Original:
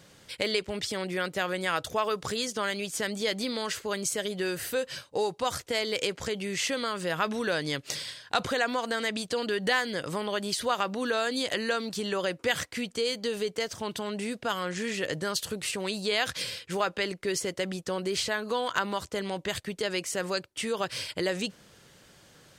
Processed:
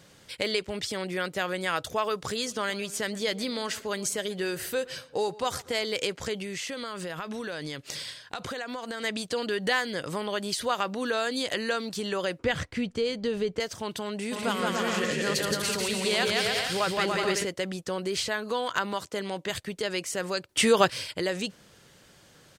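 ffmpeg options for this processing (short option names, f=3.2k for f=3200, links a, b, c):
-filter_complex "[0:a]asplit=3[a][b][c];[a]afade=t=out:st=2.45:d=0.02[d];[b]asplit=2[e][f];[f]adelay=122,lowpass=f=2k:p=1,volume=-18.5dB,asplit=2[g][h];[h]adelay=122,lowpass=f=2k:p=1,volume=0.49,asplit=2[i][j];[j]adelay=122,lowpass=f=2k:p=1,volume=0.49,asplit=2[k][l];[l]adelay=122,lowpass=f=2k:p=1,volume=0.49[m];[e][g][i][k][m]amix=inputs=5:normalize=0,afade=t=in:st=2.45:d=0.02,afade=t=out:st=5.85:d=0.02[n];[c]afade=t=in:st=5.85:d=0.02[o];[d][n][o]amix=inputs=3:normalize=0,asettb=1/sr,asplit=3[p][q][r];[p]atrim=end=6.424[s];[q]atrim=start=6.42:end=9.04,asetpts=PTS-STARTPTS,afade=t=in:d=0.004:c=qsin,afade=t=out:st=2.616:d=0.004:c=qsin,acompressor=threshold=-31dB:ratio=6:attack=3.2:release=140:knee=1:detection=peak[t];[r]atrim=start=9.036[u];[s][t]acrossfade=d=0.004:c1=hsin:c2=qsin[v];[v][u]acrossfade=d=0.004:c1=qsin:c2=hsin,asettb=1/sr,asplit=3[w][x][y];[w]atrim=end=12.394[z];[x]atrim=start=12.39:end=13.6,asetpts=PTS-STARTPTS,afade=t=in:d=0.004:c=qsin,afade=t=out:st=1.206:d=0.004:c=qsin,aemphasis=mode=reproduction:type=bsi[aa];[y]atrim=start=13.596[ab];[z][aa]acrossfade=d=0.004:c1=hsin:c2=qsin[ac];[ac][ab]acrossfade=d=0.004:c1=qsin:c2=hsin,asplit=3[ad][ae][af];[ad]afade=t=out:st=14.31:d=0.02[ag];[ae]aecho=1:1:170|289|372.3|430.6|471.4:0.794|0.631|0.501|0.398|0.316,afade=t=in:st=14.31:d=0.02,afade=t=out:st=17.43:d=0.02[ah];[af]afade=t=in:st=17.43:d=0.02[ai];[ag][ah][ai]amix=inputs=3:normalize=0,asettb=1/sr,asplit=3[aj][ak][al];[aj]atrim=end=18.934[am];[ak]atrim=start=18.93:end=19.5,asetpts=PTS-STARTPTS,afade=t=in:d=0.004:c=qsin,afade=t=out:st=0.566:d=0.004:c=qsin,highpass=140[an];[al]atrim=start=19.496[ao];[am][an]acrossfade=d=0.004:c1=hsin:c2=qsin[ap];[ap][ao]acrossfade=d=0.004:c1=qsin:c2=hsin,asplit=3[aq][ar][as];[aq]atrim=end=20.492[at];[ar]atrim=start=20.488:end=20.902,asetpts=PTS-STARTPTS,volume=10dB[au];[as]atrim=start=20.898[av];[at][au]acrossfade=d=0.004:c1=hsin:c2=hsin[aw];[aw][av]acrossfade=d=0.004:c1=hsin:c2=hsin"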